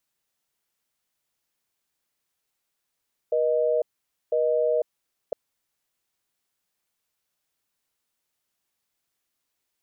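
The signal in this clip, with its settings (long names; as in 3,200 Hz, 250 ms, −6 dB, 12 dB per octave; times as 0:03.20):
call progress tone busy tone, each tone −22.5 dBFS 2.01 s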